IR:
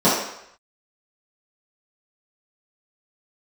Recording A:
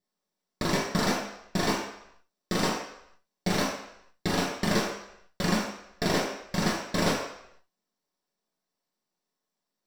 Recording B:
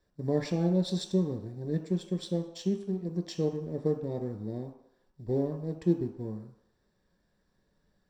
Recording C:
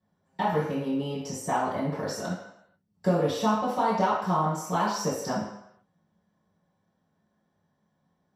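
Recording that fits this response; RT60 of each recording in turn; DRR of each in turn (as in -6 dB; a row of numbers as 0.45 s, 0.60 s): C; 0.75 s, 0.75 s, 0.75 s; -5.5 dB, 4.0 dB, -12.5 dB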